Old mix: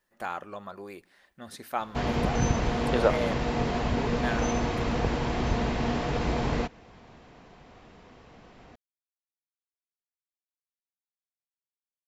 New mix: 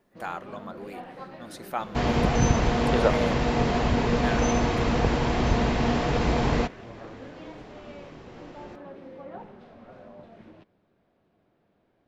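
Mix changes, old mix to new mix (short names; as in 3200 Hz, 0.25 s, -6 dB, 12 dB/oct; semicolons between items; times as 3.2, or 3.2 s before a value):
first sound: unmuted; second sound +4.0 dB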